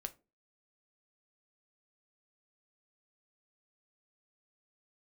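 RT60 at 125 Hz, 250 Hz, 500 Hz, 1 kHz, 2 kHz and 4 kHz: 0.40, 0.40, 0.35, 0.25, 0.20, 0.20 s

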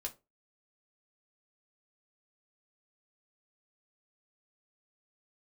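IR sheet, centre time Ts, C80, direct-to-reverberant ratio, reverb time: 8 ms, 25.0 dB, 0.5 dB, 0.25 s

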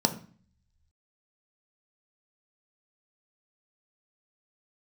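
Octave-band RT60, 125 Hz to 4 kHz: 1.1, 0.70, 0.40, 0.45, 0.45, 0.45 s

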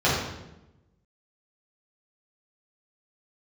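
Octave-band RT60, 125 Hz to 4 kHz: 1.3, 1.2, 1.0, 0.85, 0.80, 0.75 s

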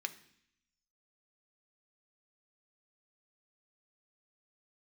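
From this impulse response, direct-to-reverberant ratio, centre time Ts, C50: 7.0 dB, 5 ms, 15.5 dB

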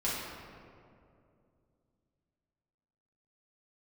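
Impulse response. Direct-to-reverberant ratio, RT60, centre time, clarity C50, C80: -8.5 dB, 2.5 s, 0.117 s, -1.5 dB, 1.0 dB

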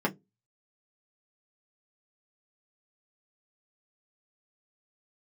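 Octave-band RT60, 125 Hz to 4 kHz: 0.25, 0.25, 0.25, 0.10, 0.10, 0.10 s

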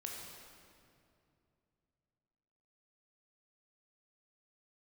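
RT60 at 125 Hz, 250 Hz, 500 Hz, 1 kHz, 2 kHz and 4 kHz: 3.7, 3.2, 2.8, 2.4, 2.0, 1.7 s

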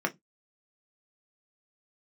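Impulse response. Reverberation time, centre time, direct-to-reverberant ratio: not exponential, 7 ms, 3.0 dB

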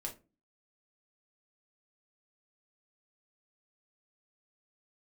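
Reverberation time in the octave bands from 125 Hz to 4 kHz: 0.45, 0.50, 0.35, 0.25, 0.25, 0.20 s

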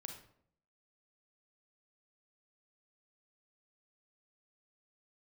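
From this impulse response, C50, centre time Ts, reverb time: 6.0 dB, 23 ms, 0.65 s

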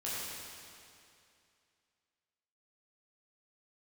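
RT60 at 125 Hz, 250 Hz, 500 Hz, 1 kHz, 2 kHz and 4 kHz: 2.5, 2.5, 2.5, 2.5, 2.5, 2.4 s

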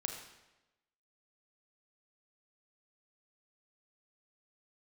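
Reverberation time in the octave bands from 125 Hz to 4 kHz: 1.0, 1.0, 1.1, 1.0, 0.95, 0.90 s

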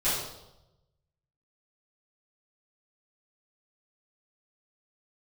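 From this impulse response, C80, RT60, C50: 4.0 dB, 0.95 s, 0.5 dB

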